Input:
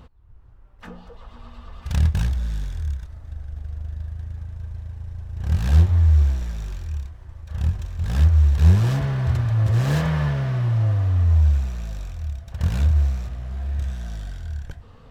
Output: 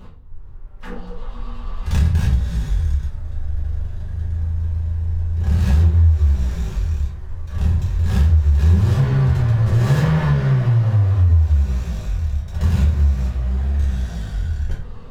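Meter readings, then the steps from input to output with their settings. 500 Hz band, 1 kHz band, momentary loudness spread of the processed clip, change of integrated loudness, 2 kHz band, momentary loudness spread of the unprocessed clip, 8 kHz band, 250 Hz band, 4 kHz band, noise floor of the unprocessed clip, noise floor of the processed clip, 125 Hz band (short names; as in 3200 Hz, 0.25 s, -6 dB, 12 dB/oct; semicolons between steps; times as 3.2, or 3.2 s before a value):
+4.5 dB, +3.5 dB, 14 LU, +2.5 dB, +3.0 dB, 18 LU, n/a, +5.5 dB, +2.0 dB, -46 dBFS, -34 dBFS, +3.5 dB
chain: shoebox room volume 36 m³, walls mixed, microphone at 1.1 m; compressor 3:1, threshold -13 dBFS, peak gain reduction 9.5 dB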